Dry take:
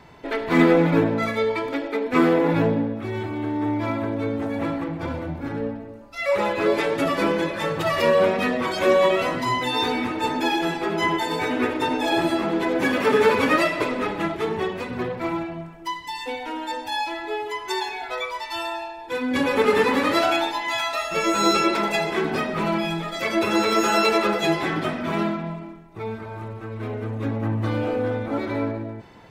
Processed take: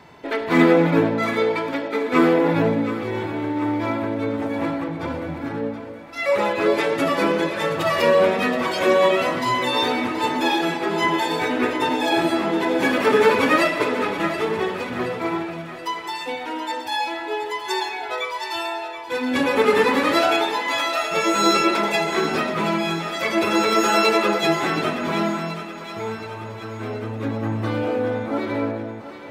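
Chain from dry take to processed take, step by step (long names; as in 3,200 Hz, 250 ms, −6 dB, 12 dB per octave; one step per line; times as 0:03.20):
high-pass filter 130 Hz 6 dB per octave
feedback echo with a high-pass in the loop 725 ms, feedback 55%, level −11 dB
level +2 dB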